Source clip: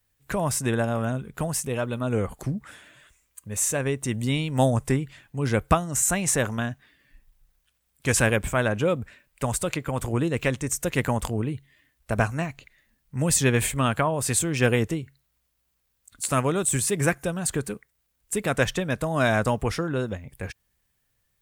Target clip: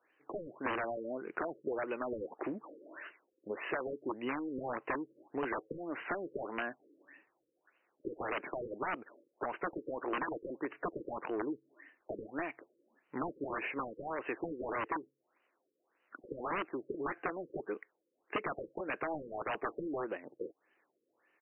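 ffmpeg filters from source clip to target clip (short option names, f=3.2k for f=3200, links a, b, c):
-filter_complex "[0:a]highpass=f=330:t=q:w=4,aresample=8000,aeval=exprs='(mod(5.31*val(0)+1,2)-1)/5.31':c=same,aresample=44100,asplit=2[a][b];[b]highpass=f=720:p=1,volume=19dB,asoftclip=type=tanh:threshold=-8.5dB[c];[a][c]amix=inputs=2:normalize=0,lowpass=f=3k:p=1,volume=-6dB,lowshelf=f=450:g=-6,acompressor=threshold=-32dB:ratio=5,afftfilt=real='re*lt(b*sr/1024,540*pow(3100/540,0.5+0.5*sin(2*PI*1.7*pts/sr)))':imag='im*lt(b*sr/1024,540*pow(3100/540,0.5+0.5*sin(2*PI*1.7*pts/sr)))':win_size=1024:overlap=0.75,volume=-3dB"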